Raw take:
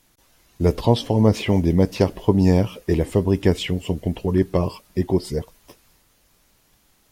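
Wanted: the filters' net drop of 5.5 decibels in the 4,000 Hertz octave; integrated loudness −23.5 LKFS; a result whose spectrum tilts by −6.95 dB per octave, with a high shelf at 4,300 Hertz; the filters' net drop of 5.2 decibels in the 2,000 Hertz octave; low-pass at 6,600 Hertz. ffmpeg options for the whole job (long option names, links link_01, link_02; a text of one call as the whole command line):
ffmpeg -i in.wav -af "lowpass=6600,equalizer=frequency=2000:width_type=o:gain=-5,equalizer=frequency=4000:width_type=o:gain=-7,highshelf=frequency=4300:gain=3.5,volume=-2.5dB" out.wav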